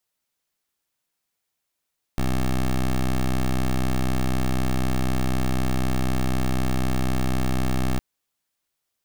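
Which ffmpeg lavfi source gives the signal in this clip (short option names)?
-f lavfi -i "aevalsrc='0.0841*(2*lt(mod(64*t,1),0.13)-1)':d=5.81:s=44100"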